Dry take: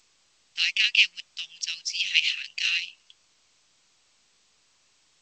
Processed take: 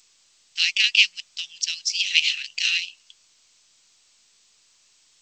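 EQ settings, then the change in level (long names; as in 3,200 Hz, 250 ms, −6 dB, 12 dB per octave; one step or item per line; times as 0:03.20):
high-shelf EQ 2,900 Hz +11 dB
−2.5 dB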